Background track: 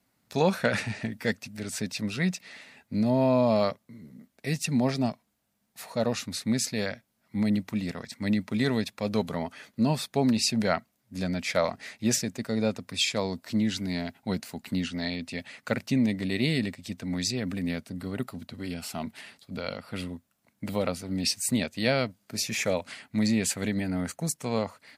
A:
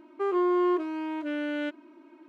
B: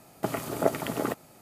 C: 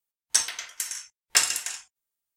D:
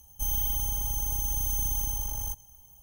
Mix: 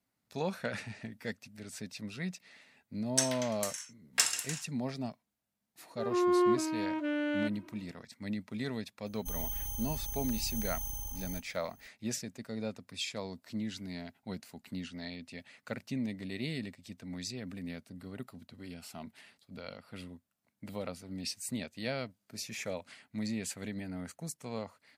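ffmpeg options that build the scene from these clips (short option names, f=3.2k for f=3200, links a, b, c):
-filter_complex "[0:a]volume=-11dB[a];[1:a]dynaudnorm=f=100:g=7:m=15dB[b];[3:a]atrim=end=2.36,asetpts=PTS-STARTPTS,volume=-7dB,afade=t=in:d=0.004:c=hsin,afade=t=out:st=2.356:d=0.004:c=hsin,adelay=2830[c];[b]atrim=end=2.28,asetpts=PTS-STARTPTS,volume=-16.5dB,afade=t=in:d=0.004:c=hsin,afade=t=out:st=2.276:d=0.004:c=hsin,adelay=5780[d];[4:a]atrim=end=2.82,asetpts=PTS-STARTPTS,volume=-9dB,afade=t=in:d=0.004:c=hsin,afade=t=out:st=2.816:d=0.004:c=hsin,adelay=399546S[e];[a][c][d][e]amix=inputs=4:normalize=0"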